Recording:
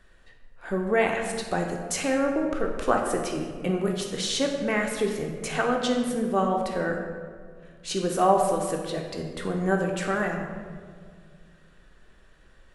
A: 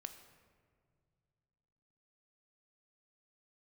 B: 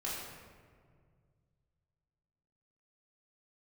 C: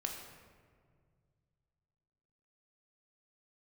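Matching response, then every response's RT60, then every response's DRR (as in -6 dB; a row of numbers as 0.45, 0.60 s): C; 2.1, 1.9, 1.9 s; 7.5, -8.0, 1.0 dB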